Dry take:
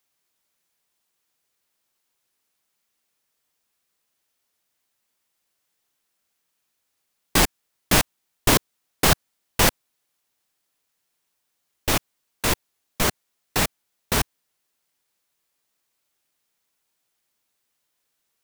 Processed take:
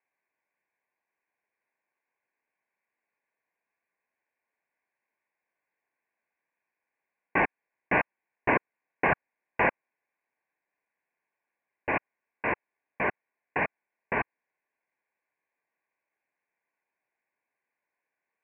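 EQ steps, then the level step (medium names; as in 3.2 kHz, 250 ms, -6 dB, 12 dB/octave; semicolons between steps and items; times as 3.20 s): high-pass 570 Hz 6 dB/octave; Butterworth band-stop 1.3 kHz, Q 4.6; steep low-pass 2.5 kHz 96 dB/octave; 0.0 dB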